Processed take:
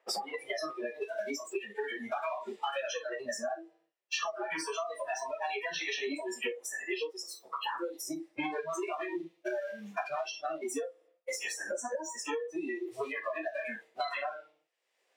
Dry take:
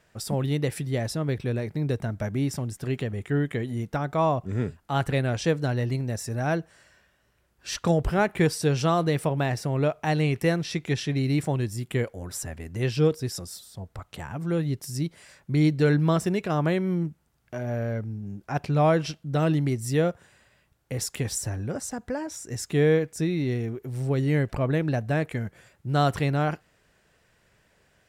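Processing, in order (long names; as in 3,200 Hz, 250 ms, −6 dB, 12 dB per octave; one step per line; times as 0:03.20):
flanger 0.98 Hz, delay 2.3 ms, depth 9.4 ms, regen −79%
leveller curve on the samples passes 3
high-pass filter 410 Hz 24 dB per octave
parametric band 1,500 Hz −10 dB 0.26 octaves
delay with a band-pass on its return 74 ms, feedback 39%, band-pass 1,400 Hz, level −11.5 dB
brickwall limiter −18 dBFS, peak gain reduction 7 dB
time stretch by phase vocoder 0.54×
high-shelf EQ 5,800 Hz −7 dB
on a send at −3.5 dB: convolution reverb RT60 0.60 s, pre-delay 6 ms
on the sum: downward compressor 8 to 1, threshold −34 dBFS, peak gain reduction 12 dB
noise reduction from a noise print of the clip's start 27 dB
multiband upward and downward compressor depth 100%
level +4.5 dB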